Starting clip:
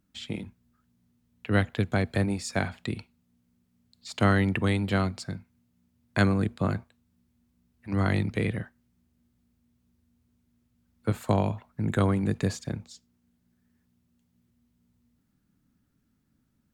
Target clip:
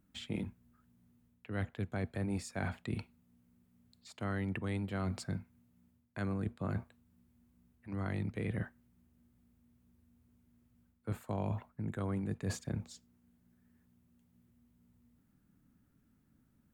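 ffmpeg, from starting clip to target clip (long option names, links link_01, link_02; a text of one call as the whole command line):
ffmpeg -i in.wav -af "equalizer=frequency=4800:width=0.8:gain=-7,areverse,acompressor=threshold=-34dB:ratio=16,areverse,volume=1dB" out.wav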